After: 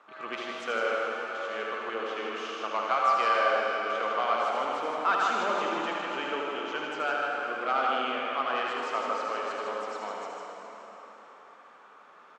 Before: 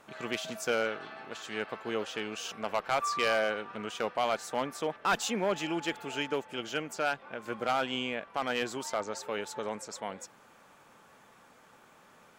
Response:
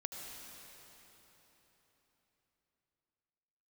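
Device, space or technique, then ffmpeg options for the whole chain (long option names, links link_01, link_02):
station announcement: -filter_complex "[0:a]highpass=330,lowpass=4000,equalizer=frequency=1200:width_type=o:width=0.48:gain=9.5,aecho=1:1:78.72|154.5:0.562|0.562[link_01];[1:a]atrim=start_sample=2205[link_02];[link_01][link_02]afir=irnorm=-1:irlink=0"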